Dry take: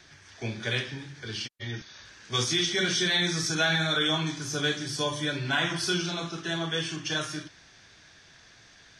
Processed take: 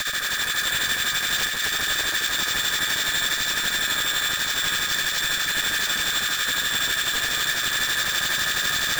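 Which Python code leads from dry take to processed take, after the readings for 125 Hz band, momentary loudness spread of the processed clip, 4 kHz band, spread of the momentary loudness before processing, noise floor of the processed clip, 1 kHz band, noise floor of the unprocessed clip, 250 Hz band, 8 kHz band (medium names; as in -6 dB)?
-8.5 dB, 1 LU, +7.0 dB, 14 LU, -27 dBFS, +5.5 dB, -55 dBFS, -8.0 dB, +11.0 dB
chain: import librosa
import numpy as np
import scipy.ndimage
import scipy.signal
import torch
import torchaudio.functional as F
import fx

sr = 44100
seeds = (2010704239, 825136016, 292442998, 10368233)

p1 = fx.bin_compress(x, sr, power=0.2)
p2 = p1 + 0.47 * np.pad(p1, (int(1.7 * sr / 1000.0), 0))[:len(p1)]
p3 = fx.rider(p2, sr, range_db=10, speed_s=0.5)
p4 = scipy.signal.sosfilt(scipy.signal.cheby1(6, 6, 1200.0, 'highpass', fs=sr, output='sos'), p3)
p5 = p4 * (1.0 - 0.79 / 2.0 + 0.79 / 2.0 * np.cos(2.0 * np.pi * 12.0 * (np.arange(len(p4)) / sr)))
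p6 = 10.0 ** (-21.5 / 20.0) * (np.abs((p5 / 10.0 ** (-21.5 / 20.0) + 3.0) % 4.0 - 2.0) - 1.0)
p7 = p6 + fx.echo_alternate(p6, sr, ms=130, hz=1900.0, feedback_pct=85, wet_db=-3, dry=0)
p8 = np.repeat(scipy.signal.resample_poly(p7, 1, 4), 4)[:len(p7)]
y = p8 * librosa.db_to_amplitude(3.0)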